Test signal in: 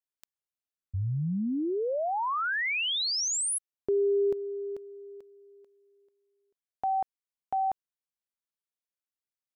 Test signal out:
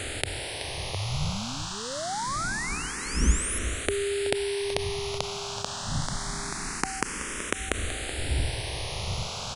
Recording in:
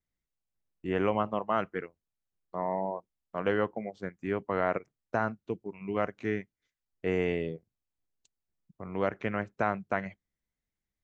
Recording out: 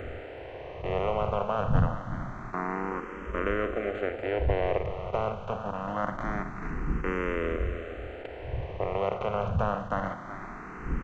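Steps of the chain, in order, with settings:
compressor on every frequency bin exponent 0.2
wind on the microphone 100 Hz −27 dBFS
on a send: single-tap delay 377 ms −11.5 dB
on the sum: frequency shifter mixed with the dry sound +0.25 Hz
level −4.5 dB

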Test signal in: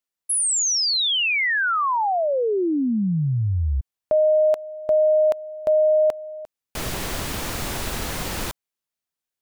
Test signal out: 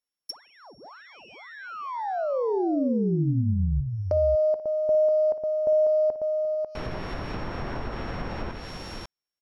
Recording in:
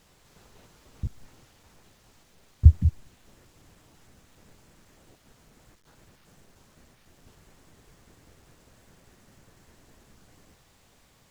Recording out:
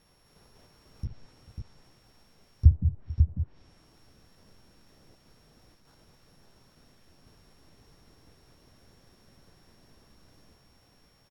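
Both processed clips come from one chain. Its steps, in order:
samples sorted by size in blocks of 8 samples
multi-tap delay 50/57/443/545 ms −19/−13/−20/−5 dB
treble cut that deepens with the level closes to 700 Hz, closed at −19 dBFS
level −3.5 dB

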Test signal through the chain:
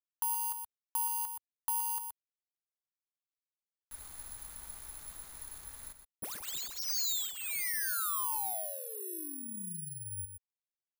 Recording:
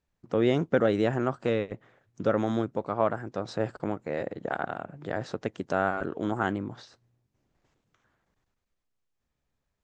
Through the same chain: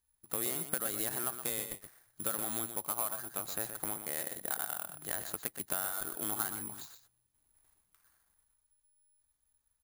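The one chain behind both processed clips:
running median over 15 samples
octave-band graphic EQ 125/250/500/4,000 Hz −12/−8/−11/+9 dB
downward compressor 6 to 1, threshold −36 dBFS
on a send: single-tap delay 123 ms −9 dB
on the sum: bad sample-rate conversion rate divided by 4×, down none, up zero stuff
level −1 dB

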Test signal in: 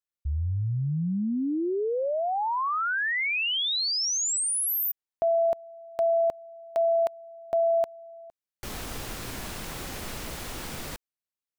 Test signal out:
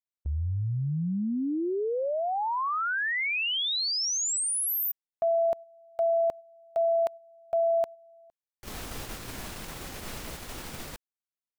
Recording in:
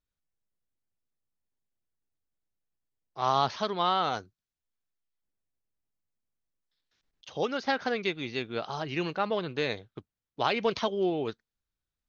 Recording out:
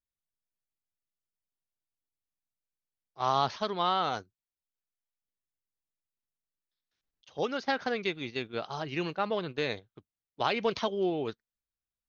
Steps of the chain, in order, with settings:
noise gate −36 dBFS, range −8 dB
level −1.5 dB

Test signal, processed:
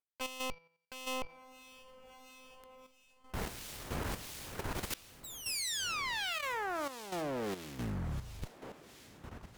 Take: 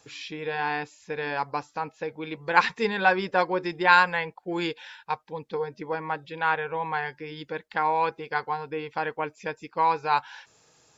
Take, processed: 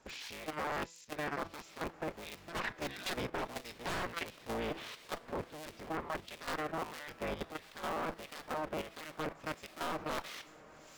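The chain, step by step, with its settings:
sub-harmonics by changed cycles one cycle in 3, inverted
harmonic generator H 5 −28 dB, 7 −43 dB, 8 −22 dB, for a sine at −3.5 dBFS
wave folding −17 dBFS
reversed playback
downward compressor 12 to 1, threshold −33 dBFS
reversed playback
hum removal 166.1 Hz, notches 36
on a send: feedback delay with all-pass diffusion 1,386 ms, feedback 52%, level −15 dB
on the sum: two-band tremolo in antiphase 1.5 Hz, depth 70%, crossover 2,200 Hz
output level in coarse steps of 10 dB
level +3.5 dB

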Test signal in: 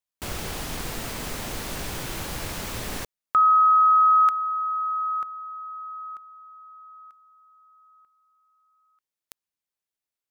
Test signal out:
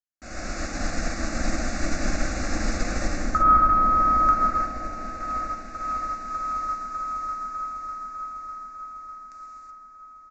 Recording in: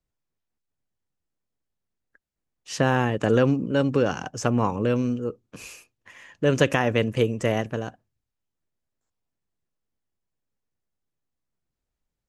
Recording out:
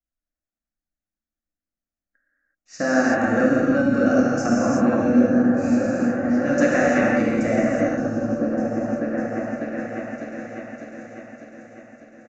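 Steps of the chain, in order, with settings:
phaser with its sweep stopped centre 640 Hz, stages 8
on a send: echo whose low-pass opens from repeat to repeat 600 ms, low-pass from 200 Hz, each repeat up 1 octave, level 0 dB
on the sum: reverb whose tail is shaped and stops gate 400 ms flat, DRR −6 dB
downsampling to 16,000 Hz
in parallel at −2 dB: brickwall limiter −15 dBFS
on the sum: expander for the loud parts 1.5 to 1, over −36 dBFS
level −1.5 dB

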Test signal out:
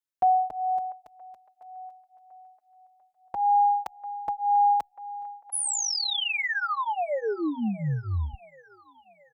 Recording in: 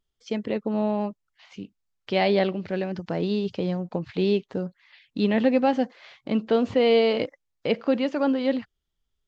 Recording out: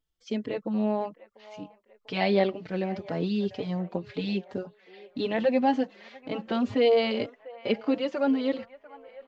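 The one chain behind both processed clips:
delay with a band-pass on its return 694 ms, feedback 50%, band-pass 1,100 Hz, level −16 dB
barber-pole flanger 4.2 ms +1.9 Hz

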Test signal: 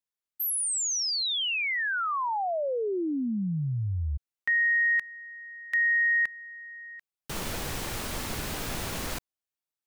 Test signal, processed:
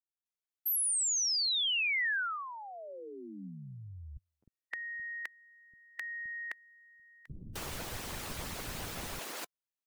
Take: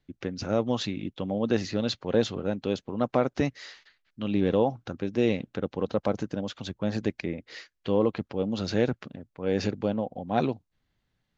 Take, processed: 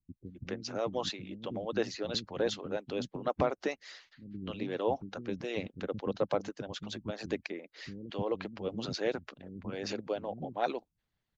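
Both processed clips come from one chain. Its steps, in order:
dynamic equaliser 190 Hz, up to +4 dB, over −45 dBFS, Q 7.6
multiband delay without the direct sound lows, highs 260 ms, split 260 Hz
harmonic and percussive parts rebalanced harmonic −15 dB
level −2 dB

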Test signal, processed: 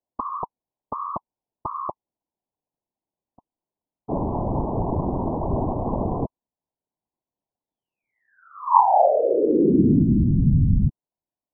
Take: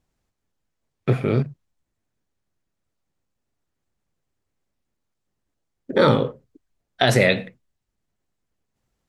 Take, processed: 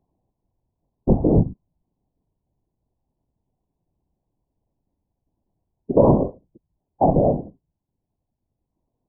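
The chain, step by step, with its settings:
Chebyshev low-pass with heavy ripple 990 Hz, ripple 6 dB
random phases in short frames
speech leveller within 4 dB 0.5 s
level +7.5 dB

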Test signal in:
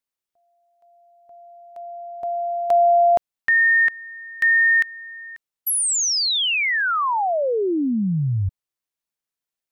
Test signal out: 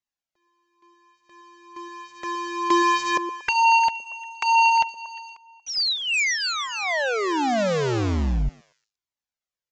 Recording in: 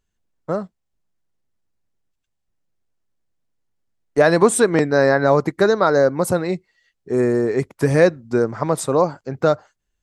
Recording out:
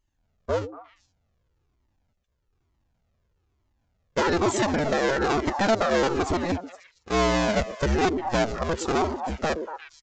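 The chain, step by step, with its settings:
sub-harmonics by changed cycles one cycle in 2, inverted
on a send: echo through a band-pass that steps 117 ms, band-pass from 340 Hz, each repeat 1.4 octaves, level −8.5 dB
on the sum: downsampling to 16,000 Hz
brickwall limiter −10 dBFS
flanger whose copies keep moving one way falling 1.1 Hz
level +1.5 dB

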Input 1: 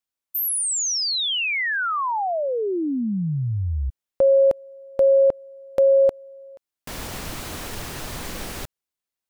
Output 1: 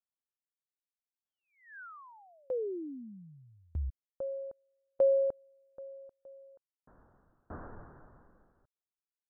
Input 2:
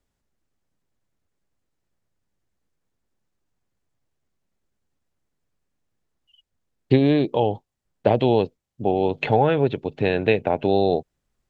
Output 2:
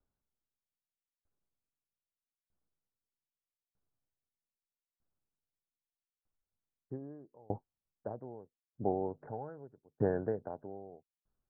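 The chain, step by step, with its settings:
Butterworth low-pass 1,600 Hz 72 dB per octave
tremolo with a ramp in dB decaying 0.8 Hz, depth 34 dB
level −7 dB

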